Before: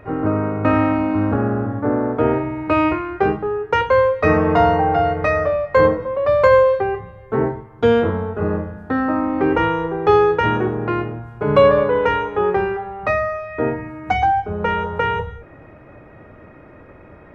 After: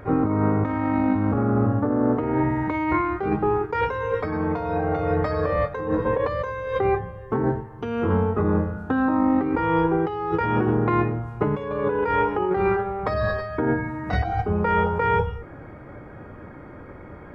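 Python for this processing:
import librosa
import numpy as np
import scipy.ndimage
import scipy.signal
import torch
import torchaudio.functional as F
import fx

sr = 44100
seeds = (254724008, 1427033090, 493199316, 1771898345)

y = fx.over_compress(x, sr, threshold_db=-21.0, ratio=-1.0)
y = fx.notch(y, sr, hz=640.0, q=12.0)
y = fx.formant_shift(y, sr, semitones=-2)
y = F.gain(torch.from_numpy(y), -1.0).numpy()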